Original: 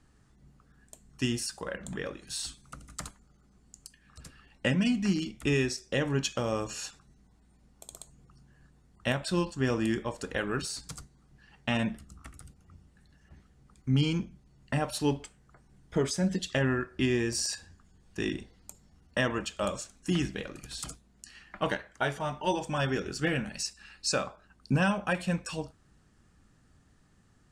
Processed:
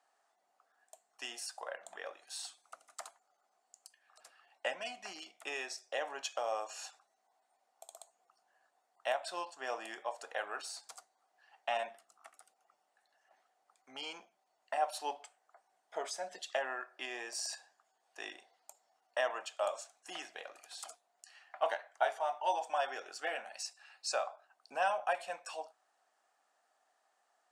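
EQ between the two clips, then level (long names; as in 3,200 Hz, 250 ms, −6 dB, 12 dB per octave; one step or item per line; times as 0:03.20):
four-pole ladder high-pass 650 Hz, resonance 70%
+3.5 dB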